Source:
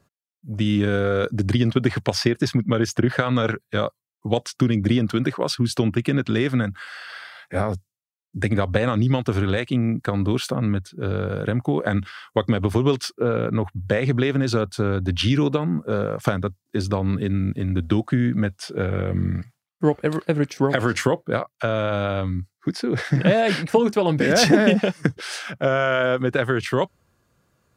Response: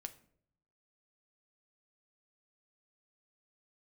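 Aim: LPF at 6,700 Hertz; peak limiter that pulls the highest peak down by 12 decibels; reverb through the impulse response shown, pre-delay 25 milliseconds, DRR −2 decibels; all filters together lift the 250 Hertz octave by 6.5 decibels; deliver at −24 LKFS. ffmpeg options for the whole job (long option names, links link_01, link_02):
-filter_complex "[0:a]lowpass=6700,equalizer=frequency=250:width_type=o:gain=8,alimiter=limit=-11dB:level=0:latency=1,asplit=2[link_01][link_02];[1:a]atrim=start_sample=2205,adelay=25[link_03];[link_02][link_03]afir=irnorm=-1:irlink=0,volume=6dB[link_04];[link_01][link_04]amix=inputs=2:normalize=0,volume=-6dB"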